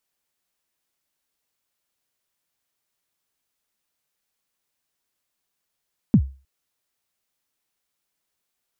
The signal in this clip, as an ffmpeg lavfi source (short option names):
-f lavfi -i "aevalsrc='0.447*pow(10,-3*t/0.33)*sin(2*PI*(260*0.07/log(67/260)*(exp(log(67/260)*min(t,0.07)/0.07)-1)+67*max(t-0.07,0)))':d=0.31:s=44100"